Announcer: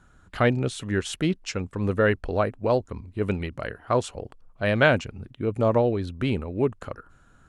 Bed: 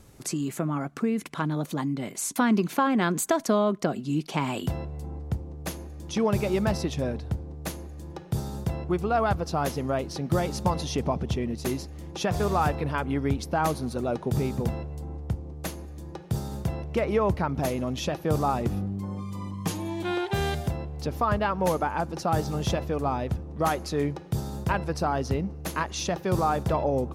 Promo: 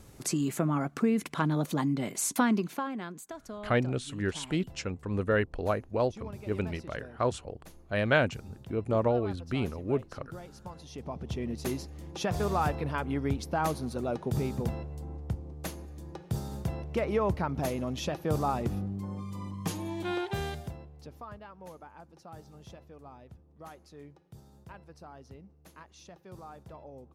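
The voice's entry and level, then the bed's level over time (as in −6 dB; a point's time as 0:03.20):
3.30 s, −5.5 dB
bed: 0:02.32 0 dB
0:03.23 −19 dB
0:10.75 −19 dB
0:11.49 −4 dB
0:20.20 −4 dB
0:21.45 −22.5 dB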